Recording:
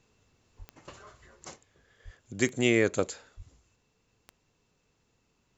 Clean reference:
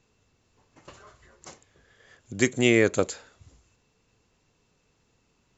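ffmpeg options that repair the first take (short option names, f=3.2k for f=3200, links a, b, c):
-filter_complex "[0:a]adeclick=t=4,asplit=3[a][b][c];[a]afade=t=out:st=0.58:d=0.02[d];[b]highpass=f=140:w=0.5412,highpass=f=140:w=1.3066,afade=t=in:st=0.58:d=0.02,afade=t=out:st=0.7:d=0.02[e];[c]afade=t=in:st=0.7:d=0.02[f];[d][e][f]amix=inputs=3:normalize=0,asplit=3[g][h][i];[g]afade=t=out:st=2.04:d=0.02[j];[h]highpass=f=140:w=0.5412,highpass=f=140:w=1.3066,afade=t=in:st=2.04:d=0.02,afade=t=out:st=2.16:d=0.02[k];[i]afade=t=in:st=2.16:d=0.02[l];[j][k][l]amix=inputs=3:normalize=0,asplit=3[m][n][o];[m]afade=t=out:st=3.36:d=0.02[p];[n]highpass=f=140:w=0.5412,highpass=f=140:w=1.3066,afade=t=in:st=3.36:d=0.02,afade=t=out:st=3.48:d=0.02[q];[o]afade=t=in:st=3.48:d=0.02[r];[p][q][r]amix=inputs=3:normalize=0,asetnsamples=n=441:p=0,asendcmd='1.56 volume volume 4dB',volume=0dB"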